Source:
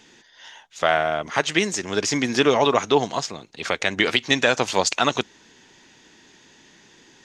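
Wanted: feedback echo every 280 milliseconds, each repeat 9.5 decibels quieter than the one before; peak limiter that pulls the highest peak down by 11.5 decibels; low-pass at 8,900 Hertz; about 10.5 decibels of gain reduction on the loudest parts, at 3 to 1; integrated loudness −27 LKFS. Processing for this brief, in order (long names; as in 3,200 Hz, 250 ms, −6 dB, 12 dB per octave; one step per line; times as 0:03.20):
low-pass filter 8,900 Hz
downward compressor 3 to 1, threshold −28 dBFS
brickwall limiter −20.5 dBFS
repeating echo 280 ms, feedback 33%, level −9.5 dB
level +6.5 dB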